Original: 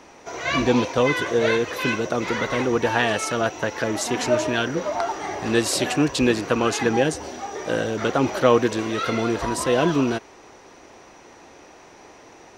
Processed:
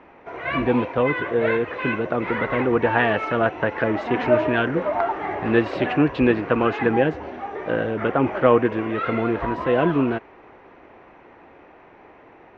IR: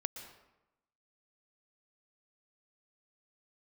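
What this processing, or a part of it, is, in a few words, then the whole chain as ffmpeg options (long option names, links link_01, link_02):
action camera in a waterproof case: -filter_complex "[0:a]asettb=1/sr,asplit=3[link_01][link_02][link_03];[link_01]atrim=end=7.974[link_04];[link_02]atrim=start=7.97:end=8.95,asetpts=PTS-STARTPTS,afade=type=in:duration=0.004:curve=qsin,afade=type=out:start_time=0.976:duration=0.004:curve=qsin,equalizer=frequency=4000:width=6.3:gain=-8.5[link_05];[link_03]atrim=start=8.946[link_06];[link_04][link_05]acrossfade=duration=0.004:curve1=hsin:curve2=qsin[link_07];[link_07][link_06]acrossfade=duration=0.004:curve1=qsin:curve2=hsin,lowpass=frequency=2500:width=0.5412,lowpass=frequency=2500:width=1.3066,dynaudnorm=framelen=460:gausssize=11:maxgain=11.5dB,volume=-1dB" -ar 48000 -c:a aac -b:a 96k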